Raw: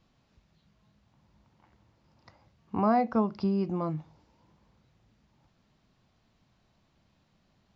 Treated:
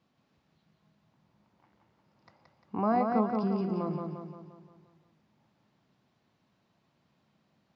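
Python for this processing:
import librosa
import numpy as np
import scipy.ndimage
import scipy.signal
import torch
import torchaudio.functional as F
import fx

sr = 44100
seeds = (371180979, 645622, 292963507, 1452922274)

y = scipy.signal.sosfilt(scipy.signal.butter(2, 140.0, 'highpass', fs=sr, output='sos'), x)
y = fx.high_shelf(y, sr, hz=4000.0, db=-6.5)
y = fx.echo_feedback(y, sr, ms=175, feedback_pct=52, wet_db=-4)
y = y * librosa.db_to_amplitude(-2.5)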